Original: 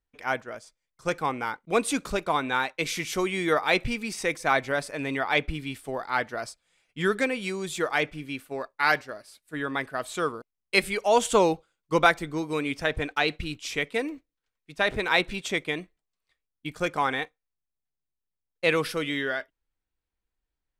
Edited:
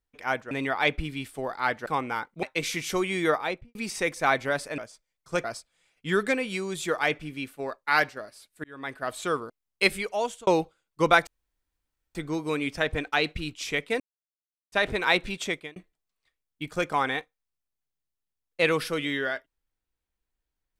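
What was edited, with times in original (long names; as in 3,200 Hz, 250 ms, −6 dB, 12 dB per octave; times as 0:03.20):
0:00.51–0:01.17: swap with 0:05.01–0:06.36
0:01.74–0:02.66: remove
0:03.49–0:03.98: fade out and dull
0:09.56–0:10.00: fade in
0:10.80–0:11.39: fade out
0:12.19: splice in room tone 0.88 s
0:14.04–0:14.76: silence
0:15.48–0:15.80: fade out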